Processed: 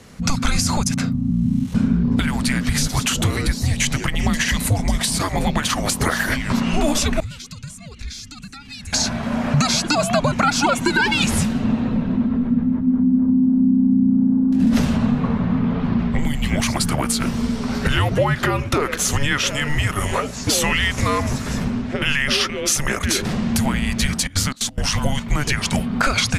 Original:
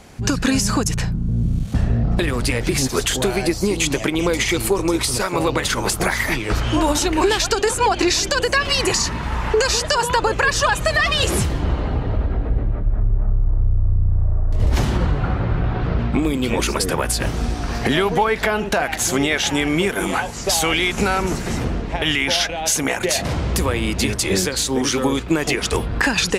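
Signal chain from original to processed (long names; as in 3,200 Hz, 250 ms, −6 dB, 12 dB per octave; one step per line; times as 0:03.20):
0:24.20–0:24.88: gate pattern ".xx.x.xx" 178 BPM −24 dB
frequency shifter −290 Hz
0:07.20–0:08.93: guitar amp tone stack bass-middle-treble 6-0-2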